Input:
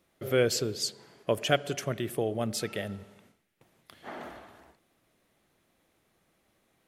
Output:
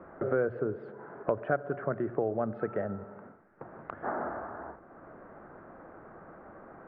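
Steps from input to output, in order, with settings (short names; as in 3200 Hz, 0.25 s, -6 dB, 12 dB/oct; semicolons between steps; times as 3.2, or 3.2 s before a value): elliptic low-pass 1500 Hz, stop band 80 dB; low shelf 340 Hz -7 dB; notches 60/120 Hz; in parallel at -2 dB: limiter -24.5 dBFS, peak gain reduction 9.5 dB; on the sum: three-band squash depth 70%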